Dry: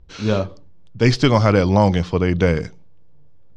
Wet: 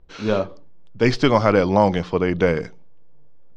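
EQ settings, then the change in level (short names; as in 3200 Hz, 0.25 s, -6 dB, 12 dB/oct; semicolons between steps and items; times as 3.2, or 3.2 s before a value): bell 72 Hz -12.5 dB 2.5 oct; high shelf 3400 Hz -10 dB; +2.0 dB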